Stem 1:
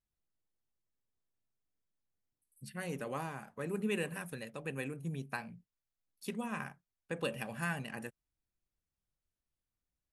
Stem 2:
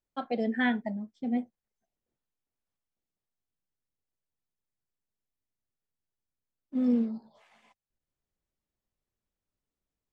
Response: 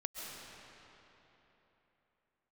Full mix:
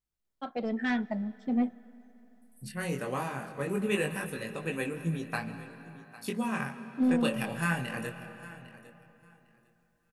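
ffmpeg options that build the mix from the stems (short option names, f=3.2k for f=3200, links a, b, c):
-filter_complex "[0:a]flanger=delay=18:depth=6.1:speed=0.2,volume=0dB,asplit=4[a][b][c][d];[b]volume=-7.5dB[e];[c]volume=-15.5dB[f];[1:a]asoftclip=type=tanh:threshold=-22.5dB,adelay=250,volume=-3dB,asplit=2[g][h];[h]volume=-22.5dB[i];[d]apad=whole_len=457457[j];[g][j]sidechaincompress=threshold=-41dB:ratio=8:attack=16:release=465[k];[2:a]atrim=start_sample=2205[l];[e][i]amix=inputs=2:normalize=0[m];[m][l]afir=irnorm=-1:irlink=0[n];[f]aecho=0:1:803|1606|2409:1|0.17|0.0289[o];[a][k][n][o]amix=inputs=4:normalize=0,dynaudnorm=f=450:g=5:m=7dB"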